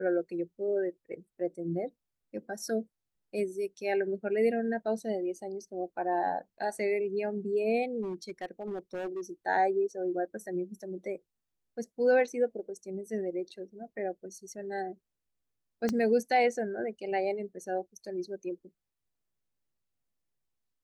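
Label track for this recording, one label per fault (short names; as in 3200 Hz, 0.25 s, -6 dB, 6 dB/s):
8.020000	9.210000	clipped -32 dBFS
15.890000	15.890000	pop -17 dBFS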